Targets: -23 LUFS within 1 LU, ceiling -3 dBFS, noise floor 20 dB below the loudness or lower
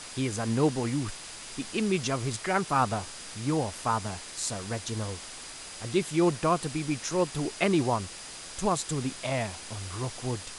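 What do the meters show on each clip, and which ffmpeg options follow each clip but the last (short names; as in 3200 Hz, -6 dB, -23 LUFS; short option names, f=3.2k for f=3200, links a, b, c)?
steady tone 4900 Hz; tone level -51 dBFS; noise floor -43 dBFS; noise floor target -50 dBFS; loudness -30.0 LUFS; peak -12.0 dBFS; loudness target -23.0 LUFS
-> -af "bandreject=f=4.9k:w=30"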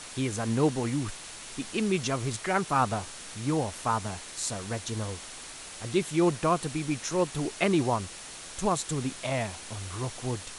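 steady tone none; noise floor -43 dBFS; noise floor target -50 dBFS
-> -af "afftdn=nr=7:nf=-43"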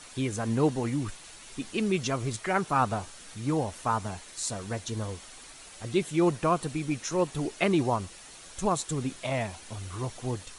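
noise floor -48 dBFS; noise floor target -50 dBFS
-> -af "afftdn=nr=6:nf=-48"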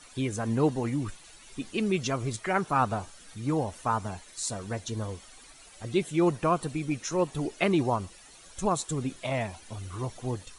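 noise floor -52 dBFS; loudness -30.0 LUFS; peak -12.5 dBFS; loudness target -23.0 LUFS
-> -af "volume=7dB"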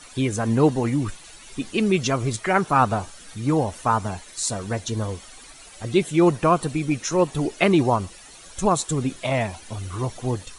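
loudness -23.0 LUFS; peak -5.5 dBFS; noise floor -45 dBFS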